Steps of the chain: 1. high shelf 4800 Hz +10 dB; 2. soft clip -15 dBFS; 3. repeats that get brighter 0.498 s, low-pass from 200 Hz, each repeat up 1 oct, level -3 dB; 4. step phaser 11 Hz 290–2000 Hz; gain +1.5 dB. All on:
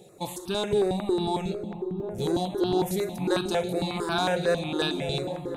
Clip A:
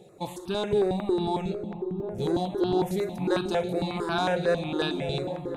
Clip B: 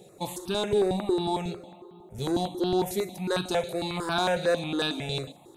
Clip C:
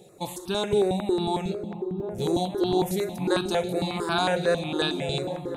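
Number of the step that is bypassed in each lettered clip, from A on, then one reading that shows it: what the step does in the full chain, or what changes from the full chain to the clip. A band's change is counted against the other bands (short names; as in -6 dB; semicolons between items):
1, 8 kHz band -7.0 dB; 3, 125 Hz band -2.0 dB; 2, distortion -21 dB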